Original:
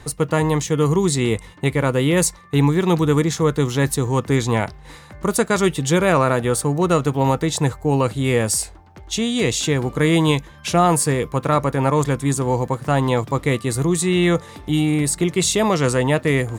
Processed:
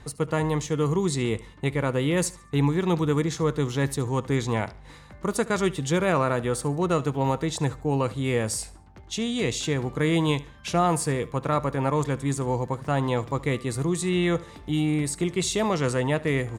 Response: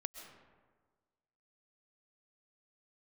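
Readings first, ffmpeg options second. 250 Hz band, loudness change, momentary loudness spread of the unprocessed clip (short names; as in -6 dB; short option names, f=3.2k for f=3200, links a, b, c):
-6.5 dB, -6.5 dB, 5 LU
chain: -af "highshelf=f=12k:g=-11.5,aeval=exprs='val(0)+0.00501*(sin(2*PI*50*n/s)+sin(2*PI*2*50*n/s)/2+sin(2*PI*3*50*n/s)/3+sin(2*PI*4*50*n/s)/4+sin(2*PI*5*50*n/s)/5)':c=same,aecho=1:1:72|144|216:0.106|0.0328|0.0102,volume=-6.5dB"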